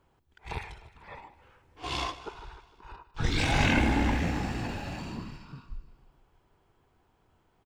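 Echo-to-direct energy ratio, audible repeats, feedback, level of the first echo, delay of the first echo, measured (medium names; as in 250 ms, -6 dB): -14.5 dB, 4, 58%, -16.5 dB, 152 ms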